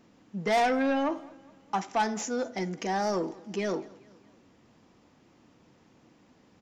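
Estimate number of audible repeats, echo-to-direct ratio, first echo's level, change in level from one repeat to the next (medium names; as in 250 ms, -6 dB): 2, -22.5 dB, -24.0 dB, -5.5 dB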